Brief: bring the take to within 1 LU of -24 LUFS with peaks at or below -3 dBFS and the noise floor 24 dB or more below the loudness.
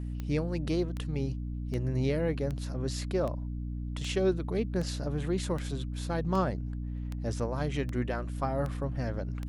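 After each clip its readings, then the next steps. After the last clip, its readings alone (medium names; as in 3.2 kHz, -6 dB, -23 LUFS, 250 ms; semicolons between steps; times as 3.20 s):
clicks found 13; hum 60 Hz; highest harmonic 300 Hz; hum level -33 dBFS; loudness -32.5 LUFS; peak level -16.0 dBFS; loudness target -24.0 LUFS
-> de-click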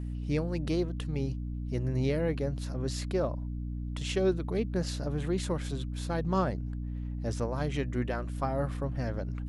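clicks found 0; hum 60 Hz; highest harmonic 300 Hz; hum level -33 dBFS
-> hum notches 60/120/180/240/300 Hz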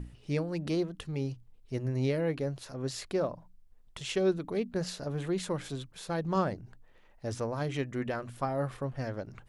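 hum not found; loudness -34.0 LUFS; peak level -17.0 dBFS; loudness target -24.0 LUFS
-> trim +10 dB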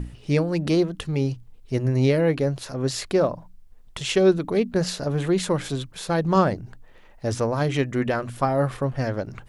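loudness -24.0 LUFS; peak level -7.0 dBFS; noise floor -49 dBFS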